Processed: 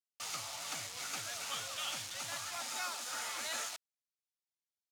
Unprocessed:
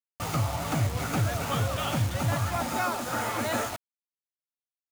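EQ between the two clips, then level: band-pass 5500 Hz, Q 0.87; 0.0 dB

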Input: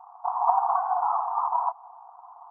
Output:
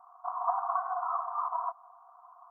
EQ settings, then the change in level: bell 710 Hz -2.5 dB; fixed phaser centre 570 Hz, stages 8; 0.0 dB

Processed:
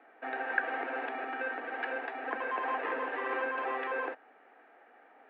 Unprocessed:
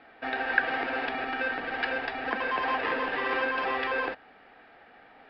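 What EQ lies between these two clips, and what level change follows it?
HPF 280 Hz 24 dB/oct; Bessel low-pass 1800 Hz, order 4; -3.5 dB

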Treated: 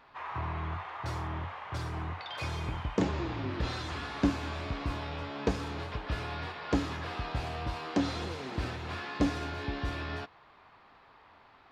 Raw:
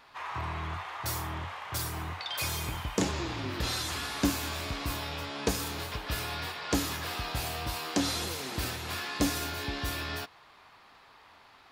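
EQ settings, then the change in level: tape spacing loss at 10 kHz 25 dB; +1.5 dB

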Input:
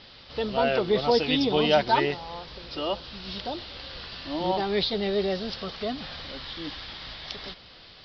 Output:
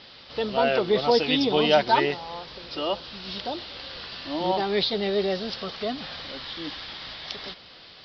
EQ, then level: low shelf 91 Hz -12 dB; +2.0 dB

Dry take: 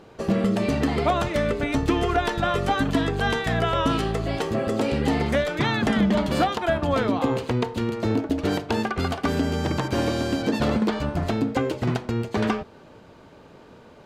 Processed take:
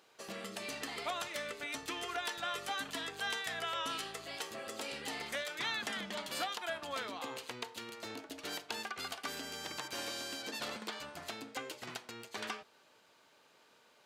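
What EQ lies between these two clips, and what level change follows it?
differentiator; high shelf 4300 Hz -7.5 dB; +2.5 dB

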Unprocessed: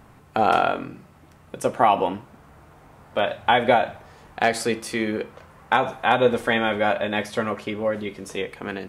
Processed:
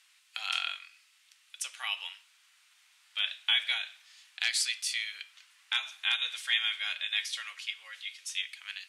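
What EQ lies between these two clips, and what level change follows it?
ladder high-pass 2400 Hz, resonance 25%; LPF 10000 Hz 12 dB/oct; +8.0 dB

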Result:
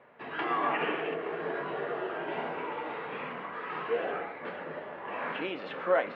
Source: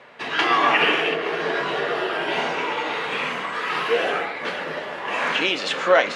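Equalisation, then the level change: air absorption 360 m; bell 6000 Hz -8.5 dB 2.6 oct; -7.5 dB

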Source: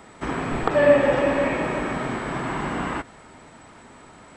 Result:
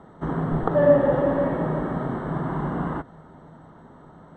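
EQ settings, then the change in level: running mean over 18 samples; bell 160 Hz +11.5 dB 0.24 oct; 0.0 dB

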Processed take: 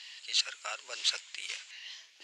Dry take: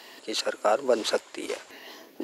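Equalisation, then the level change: resonant high-pass 2700 Hz, resonance Q 1.5; Chebyshev low-pass 7400 Hz, order 3; 0.0 dB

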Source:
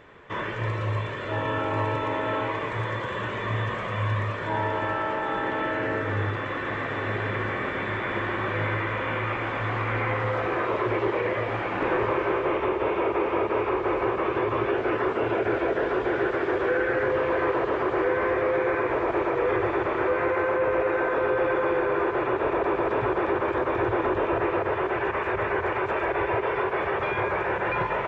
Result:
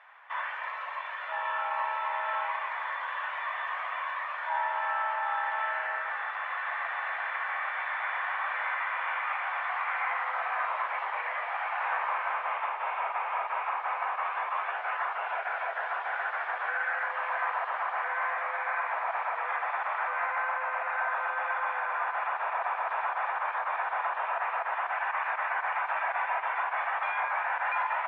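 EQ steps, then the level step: elliptic high-pass 740 Hz, stop band 60 dB; LPF 2400 Hz 12 dB/oct; 0.0 dB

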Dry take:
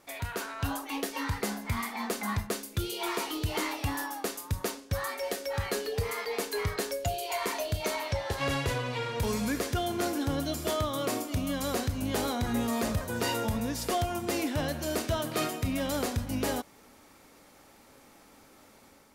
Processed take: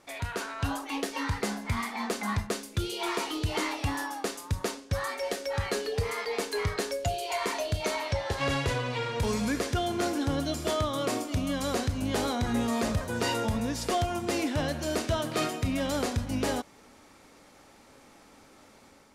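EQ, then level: LPF 9200 Hz 12 dB/oct; +1.5 dB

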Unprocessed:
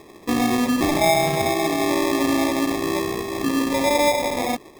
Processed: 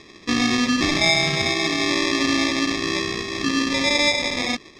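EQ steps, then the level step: EQ curve 230 Hz 0 dB, 880 Hz -9 dB, 1300 Hz +4 dB, 5600 Hz +9 dB, 14000 Hz -25 dB; 0.0 dB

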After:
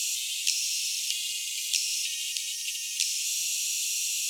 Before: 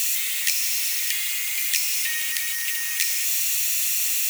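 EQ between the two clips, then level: HPF 84 Hz; Chebyshev band-stop 260–2800 Hz, order 4; LPF 7300 Hz 12 dB/oct; 0.0 dB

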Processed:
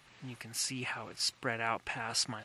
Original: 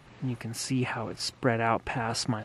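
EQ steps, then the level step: tilt shelf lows -7.5 dB, about 1100 Hz; -6.5 dB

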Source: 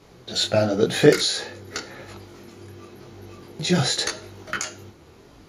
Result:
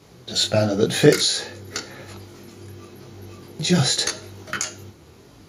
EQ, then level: HPF 83 Hz; low shelf 160 Hz +8.5 dB; high shelf 4300 Hz +7 dB; -1.0 dB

